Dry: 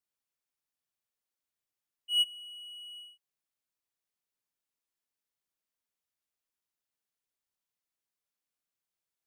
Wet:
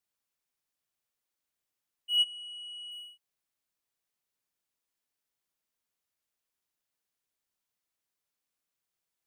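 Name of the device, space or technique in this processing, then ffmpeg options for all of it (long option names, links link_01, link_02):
parallel distortion: -filter_complex "[0:a]asplit=3[link_01][link_02][link_03];[link_01]afade=type=out:start_time=2.16:duration=0.02[link_04];[link_02]lowpass=frequency=10000:width=0.5412,lowpass=frequency=10000:width=1.3066,afade=type=in:start_time=2.16:duration=0.02,afade=type=out:start_time=2.9:duration=0.02[link_05];[link_03]afade=type=in:start_time=2.9:duration=0.02[link_06];[link_04][link_05][link_06]amix=inputs=3:normalize=0,asplit=2[link_07][link_08];[link_08]asoftclip=type=hard:threshold=-34.5dB,volume=-8dB[link_09];[link_07][link_09]amix=inputs=2:normalize=0"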